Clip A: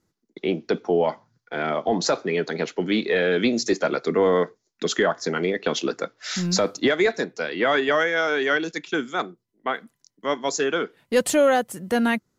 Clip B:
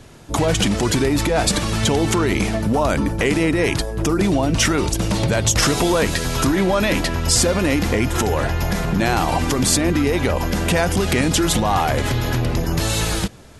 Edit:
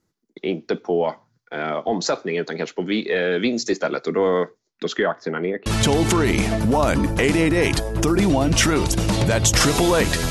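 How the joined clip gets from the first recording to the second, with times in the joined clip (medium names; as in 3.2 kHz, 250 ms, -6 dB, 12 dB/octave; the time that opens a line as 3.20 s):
clip A
4.59–5.66 s: low-pass 6.6 kHz -> 1.5 kHz
5.66 s: go over to clip B from 1.68 s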